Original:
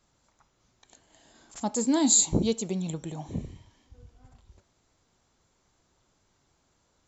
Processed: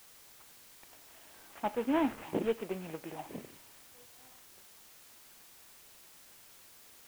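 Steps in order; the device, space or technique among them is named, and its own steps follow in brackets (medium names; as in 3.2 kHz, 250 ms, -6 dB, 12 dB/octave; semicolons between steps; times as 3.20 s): army field radio (band-pass 380–3300 Hz; CVSD coder 16 kbps; white noise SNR 17 dB)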